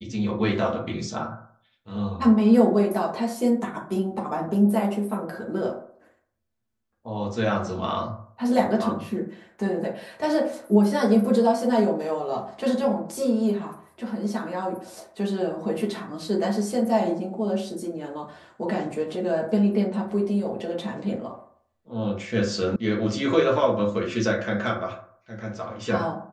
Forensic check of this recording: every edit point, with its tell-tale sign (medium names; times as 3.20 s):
22.76 s: sound stops dead